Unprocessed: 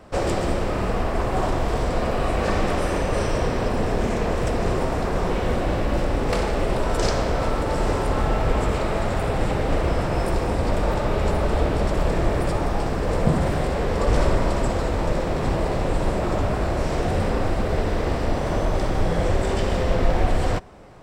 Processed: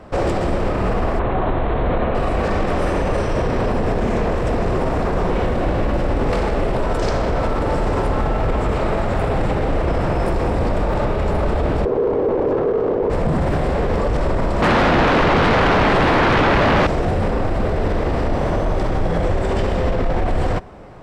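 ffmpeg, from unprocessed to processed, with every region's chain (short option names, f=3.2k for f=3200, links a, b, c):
-filter_complex "[0:a]asettb=1/sr,asplit=3[a][b][c];[a]atrim=end=1.194[d];[b]atrim=start=1.19:end=2.15,asetpts=PTS-STARTPTS,afade=t=in:d=0.004:c=qsin,afade=t=out:st=0.956:d=0.004:c=qsin,highshelf=f=6.1k:t=q:w=3:g=-13.5,acrossover=split=2800[e][f];[f]acompressor=threshold=-53dB:ratio=4:attack=1:release=60[g];[e][g]amix=inputs=2:normalize=0,asuperstop=centerf=5100:order=4:qfactor=2[h];[c]atrim=start=2.146[i];[d][h]acrossfade=d=0.004:c1=hsin:c2=qsin[j];[j][i]acrossfade=d=0.004:c1=qsin:c2=hsin,asettb=1/sr,asplit=3[k][l][m];[k]atrim=end=11.854[n];[l]atrim=start=11.85:end=13.1,asetpts=PTS-STARTPTS,afade=t=in:d=0.004:c=qsin,afade=t=out:st=1.246:d=0.004:c=qsin,bass=f=250:g=10,treble=f=4k:g=8,adynamicsmooth=sensitivity=1.5:basefreq=600,aeval=exprs='val(0)*sin(2*PI*440*n/s)':c=same[o];[m]atrim=start=13.096[p];[n][o]acrossfade=d=0.004:c1=hsin:c2=qsin[q];[q][p]acrossfade=d=0.004:c1=qsin:c2=hsin,asettb=1/sr,asplit=3[r][s][t];[r]atrim=end=14.624[u];[s]atrim=start=14.62:end=16.87,asetpts=PTS-STARTPTS,afade=t=in:d=0.004:c=qsin,afade=t=out:st=2.246:d=0.004:c=qsin,highshelf=f=4.9k:t=q:w=1.5:g=-9,aeval=exprs='0.335*sin(PI/2*6.31*val(0)/0.335)':c=same[v];[t]atrim=start=16.866[w];[u][v]acrossfade=d=0.004:c1=hsin:c2=qsin[x];[x][w]acrossfade=d=0.004:c1=qsin:c2=hsin,highshelf=f=4.1k:g=-11,alimiter=limit=-17.5dB:level=0:latency=1:release=25,volume=6.5dB"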